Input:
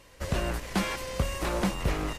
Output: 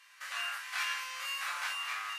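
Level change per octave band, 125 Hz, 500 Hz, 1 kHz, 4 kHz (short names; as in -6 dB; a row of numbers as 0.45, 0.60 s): under -40 dB, -26.5 dB, -4.5 dB, +0.5 dB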